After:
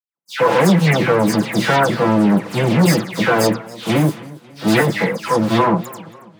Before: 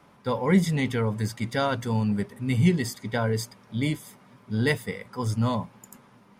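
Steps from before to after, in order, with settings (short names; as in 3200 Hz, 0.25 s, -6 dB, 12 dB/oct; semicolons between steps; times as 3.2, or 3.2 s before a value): minimum comb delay 6 ms; sample leveller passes 5; HPF 150 Hz 24 dB/oct; high shelf 3500 Hz -10 dB; dispersion lows, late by 0.145 s, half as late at 2400 Hz; expander -44 dBFS; high shelf 7900 Hz +4 dB; warbling echo 0.274 s, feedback 43%, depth 100 cents, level -20 dB; gain +2.5 dB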